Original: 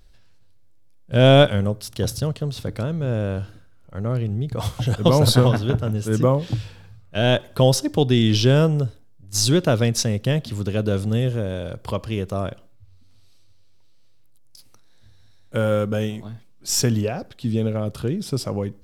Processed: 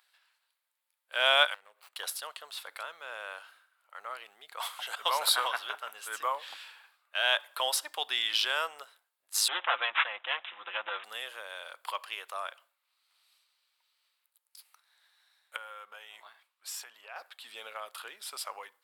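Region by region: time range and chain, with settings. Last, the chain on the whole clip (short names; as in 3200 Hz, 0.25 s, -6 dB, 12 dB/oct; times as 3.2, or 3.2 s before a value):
1.54–1.96 median filter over 25 samples + bell 930 Hz -5.5 dB 0.72 oct + compressor 12:1, threshold -31 dBFS
9.48–11.04 minimum comb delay 5.8 ms + careless resampling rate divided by 6×, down none, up filtered
15.56–17.16 high shelf 5500 Hz -5.5 dB + compressor 16:1, threshold -28 dBFS
whole clip: HPF 960 Hz 24 dB/oct; bell 5900 Hz -11.5 dB 0.69 oct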